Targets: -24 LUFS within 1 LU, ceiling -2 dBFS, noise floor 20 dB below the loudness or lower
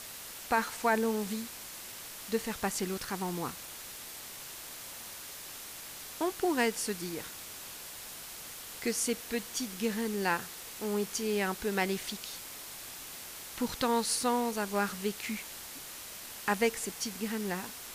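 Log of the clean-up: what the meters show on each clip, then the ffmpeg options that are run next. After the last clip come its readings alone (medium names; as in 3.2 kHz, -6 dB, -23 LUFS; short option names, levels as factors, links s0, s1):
noise floor -45 dBFS; noise floor target -55 dBFS; loudness -34.5 LUFS; peak level -15.5 dBFS; loudness target -24.0 LUFS
-> -af "afftdn=nr=10:nf=-45"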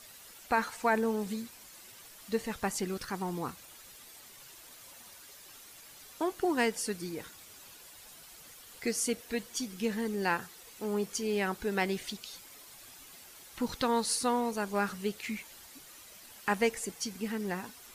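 noise floor -53 dBFS; loudness -33.0 LUFS; peak level -15.5 dBFS; loudness target -24.0 LUFS
-> -af "volume=2.82"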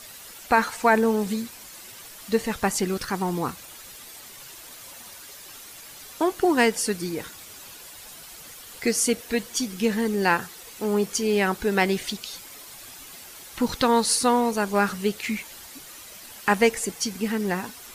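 loudness -24.0 LUFS; peak level -6.5 dBFS; noise floor -44 dBFS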